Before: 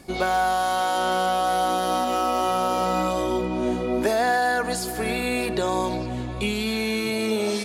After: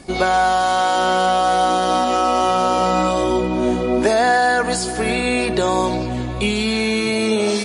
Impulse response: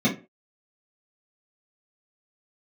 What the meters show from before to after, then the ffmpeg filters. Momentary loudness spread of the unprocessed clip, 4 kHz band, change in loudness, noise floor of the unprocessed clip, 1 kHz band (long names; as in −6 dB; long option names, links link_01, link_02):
4 LU, +6.5 dB, +6.0 dB, −30 dBFS, +6.0 dB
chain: -af "volume=6.5dB" -ar 24000 -c:a libmp3lame -b:a 40k